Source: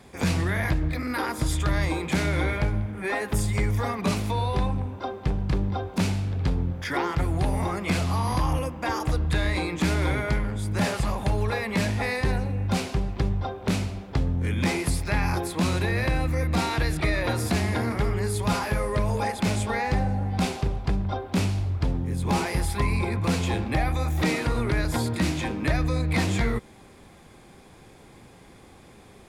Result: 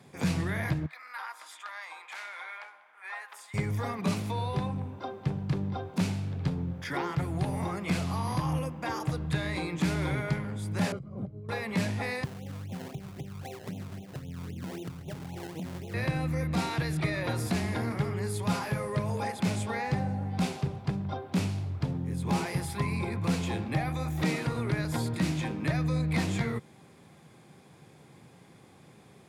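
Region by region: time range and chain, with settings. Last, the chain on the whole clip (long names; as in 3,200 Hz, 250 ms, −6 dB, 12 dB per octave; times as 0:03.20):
0:00.86–0:03.54: high-pass filter 930 Hz 24 dB per octave + high-shelf EQ 3,000 Hz −12 dB
0:10.92–0:11.49: moving average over 50 samples + compressor whose output falls as the input rises −33 dBFS
0:12.24–0:15.94: Butterworth low-pass 840 Hz 48 dB per octave + downward compressor 12 to 1, threshold −29 dBFS + sample-and-hold swept by an LFO 26× 3.8 Hz
whole clip: high-pass filter 90 Hz 24 dB per octave; parametric band 150 Hz +8.5 dB 0.48 octaves; level −6 dB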